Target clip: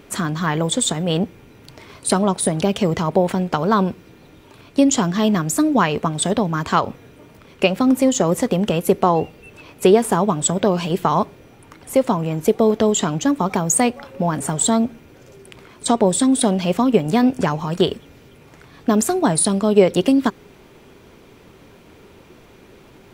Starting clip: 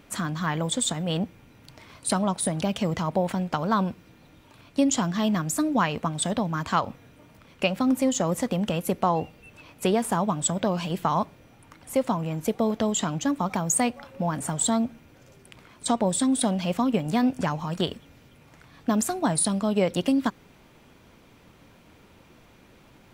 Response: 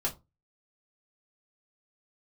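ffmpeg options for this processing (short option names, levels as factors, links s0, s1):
-af "equalizer=f=400:t=o:w=0.41:g=9,volume=2"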